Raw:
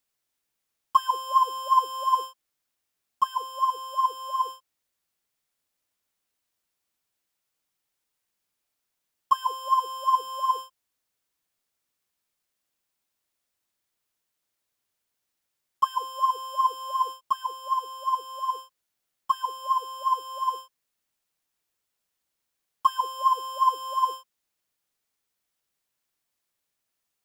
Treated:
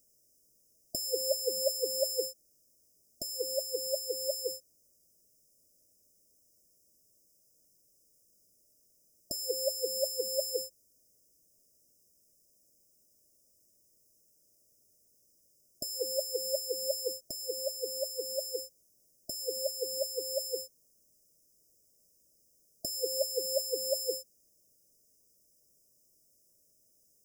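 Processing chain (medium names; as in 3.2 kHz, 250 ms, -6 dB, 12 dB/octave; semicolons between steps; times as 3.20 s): in parallel at -0.5 dB: compression, threshold -30 dBFS, peak gain reduction 16 dB; on the sum: brick-wall FIR band-stop 670–4900 Hz; trim +8 dB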